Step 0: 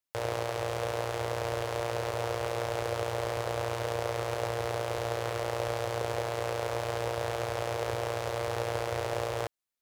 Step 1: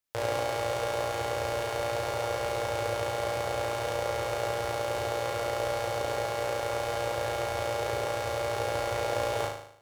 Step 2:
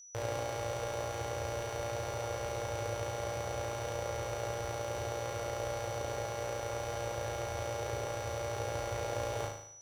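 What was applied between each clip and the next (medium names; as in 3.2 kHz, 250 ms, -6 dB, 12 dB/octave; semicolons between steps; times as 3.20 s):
on a send: flutter echo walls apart 6.5 m, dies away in 0.66 s; on the sum: gain riding within 3 dB 2 s
bass shelf 220 Hz +8.5 dB; whistle 5.9 kHz -43 dBFS; trim -8 dB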